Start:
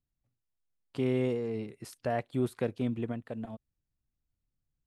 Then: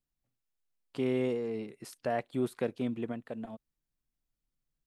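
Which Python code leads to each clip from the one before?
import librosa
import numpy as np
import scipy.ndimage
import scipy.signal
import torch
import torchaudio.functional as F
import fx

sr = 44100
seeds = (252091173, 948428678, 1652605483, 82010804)

y = fx.peak_eq(x, sr, hz=84.0, db=-14.5, octaves=0.95)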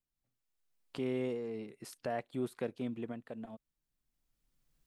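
y = fx.recorder_agc(x, sr, target_db=-29.0, rise_db_per_s=11.0, max_gain_db=30)
y = y * librosa.db_to_amplitude(-5.0)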